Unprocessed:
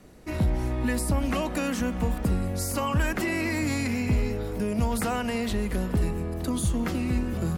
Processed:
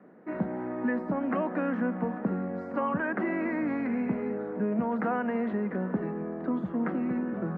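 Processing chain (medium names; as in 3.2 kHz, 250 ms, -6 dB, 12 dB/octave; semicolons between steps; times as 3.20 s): Chebyshev band-pass 190–1700 Hz, order 3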